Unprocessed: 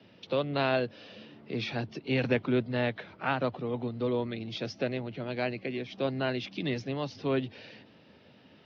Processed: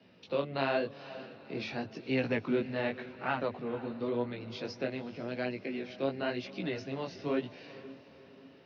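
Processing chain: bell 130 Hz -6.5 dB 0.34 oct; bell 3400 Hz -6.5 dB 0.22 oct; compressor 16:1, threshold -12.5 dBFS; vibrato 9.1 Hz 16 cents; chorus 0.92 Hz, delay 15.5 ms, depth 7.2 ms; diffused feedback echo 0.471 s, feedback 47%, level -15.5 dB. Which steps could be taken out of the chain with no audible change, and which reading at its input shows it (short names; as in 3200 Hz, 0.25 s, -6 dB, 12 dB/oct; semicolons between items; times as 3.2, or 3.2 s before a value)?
compressor, threshold -12.5 dBFS: input peak -14.5 dBFS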